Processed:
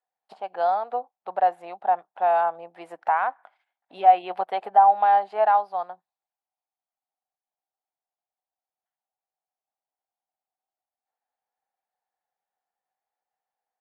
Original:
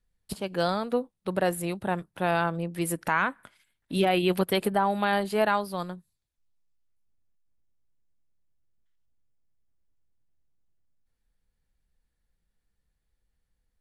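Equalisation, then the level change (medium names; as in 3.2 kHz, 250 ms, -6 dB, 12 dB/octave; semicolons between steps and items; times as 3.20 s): resonant high-pass 760 Hz, resonance Q 8.3; tape spacing loss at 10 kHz 26 dB; treble shelf 4.9 kHz -6 dB; -2.0 dB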